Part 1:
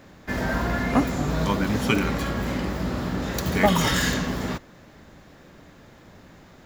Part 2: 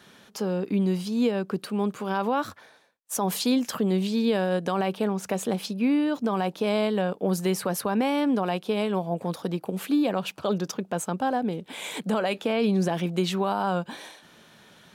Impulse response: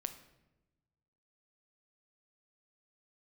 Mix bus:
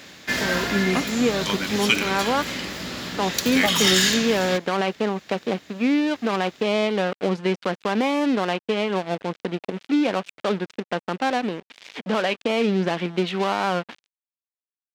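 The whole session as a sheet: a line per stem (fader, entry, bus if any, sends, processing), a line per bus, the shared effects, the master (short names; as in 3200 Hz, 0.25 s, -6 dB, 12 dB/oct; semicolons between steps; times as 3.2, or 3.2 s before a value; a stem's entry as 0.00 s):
+2.5 dB, 0.00 s, no send, high shelf 5500 Hz +8.5 dB; auto duck -7 dB, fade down 1.05 s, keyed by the second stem
-5.0 dB, 0.00 s, no send, LPF 1600 Hz 12 dB/oct; AGC gain up to 10 dB; crossover distortion -28 dBFS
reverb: off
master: weighting filter D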